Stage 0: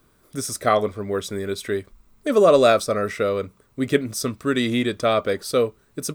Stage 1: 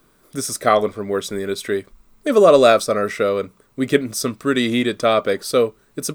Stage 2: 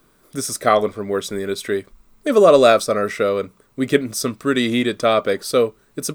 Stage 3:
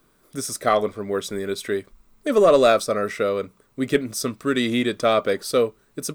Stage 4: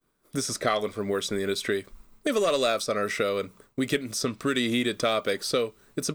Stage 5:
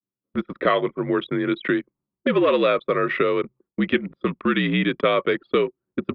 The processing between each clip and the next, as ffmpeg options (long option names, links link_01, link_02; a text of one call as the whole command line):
ffmpeg -i in.wav -af "equalizer=frequency=75:width=1.9:gain=-15,volume=3.5dB" out.wav
ffmpeg -i in.wav -af anull out.wav
ffmpeg -i in.wav -filter_complex "[0:a]dynaudnorm=framelen=310:gausssize=7:maxgain=11.5dB,asplit=2[link_01][link_02];[link_02]aeval=exprs='clip(val(0),-1,0.355)':channel_layout=same,volume=-6dB[link_03];[link_01][link_03]amix=inputs=2:normalize=0,volume=-7.5dB" out.wav
ffmpeg -i in.wav -filter_complex "[0:a]agate=range=-33dB:threshold=-50dB:ratio=3:detection=peak,acrossover=split=2100|6900[link_01][link_02][link_03];[link_01]acompressor=threshold=-30dB:ratio=4[link_04];[link_02]acompressor=threshold=-34dB:ratio=4[link_05];[link_03]acompressor=threshold=-48dB:ratio=4[link_06];[link_04][link_05][link_06]amix=inputs=3:normalize=0,volume=4.5dB" out.wav
ffmpeg -i in.wav -af "highpass=frequency=220:width_type=q:width=0.5412,highpass=frequency=220:width_type=q:width=1.307,lowpass=frequency=3200:width_type=q:width=0.5176,lowpass=frequency=3200:width_type=q:width=0.7071,lowpass=frequency=3200:width_type=q:width=1.932,afreqshift=-59,anlmdn=1,volume=6dB" out.wav